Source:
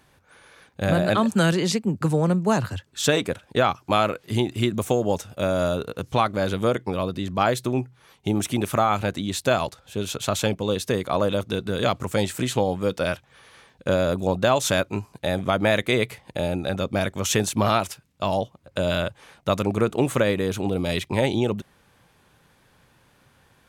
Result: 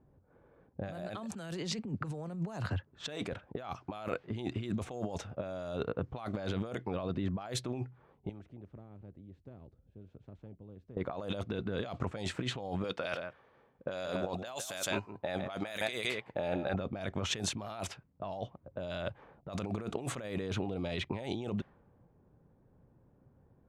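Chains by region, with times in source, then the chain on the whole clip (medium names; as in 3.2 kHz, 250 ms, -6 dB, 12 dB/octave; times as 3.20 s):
8.29–10.97 s: amplifier tone stack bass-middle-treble 10-0-1 + spectrum-flattening compressor 2:1
12.84–16.74 s: tilt EQ +3 dB/octave + delay 162 ms -12 dB
whole clip: level-controlled noise filter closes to 460 Hz, open at -16 dBFS; dynamic bell 710 Hz, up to +6 dB, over -38 dBFS, Q 4.7; compressor with a negative ratio -29 dBFS, ratio -1; trim -8.5 dB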